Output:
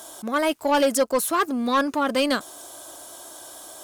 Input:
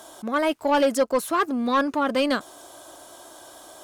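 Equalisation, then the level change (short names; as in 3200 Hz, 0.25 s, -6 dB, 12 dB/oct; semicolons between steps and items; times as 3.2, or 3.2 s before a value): high shelf 5300 Hz +9.5 dB; 0.0 dB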